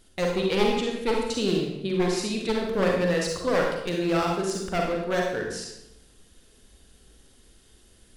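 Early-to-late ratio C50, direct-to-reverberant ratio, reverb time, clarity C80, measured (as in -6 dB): 1.5 dB, -0.5 dB, 0.80 s, 5.0 dB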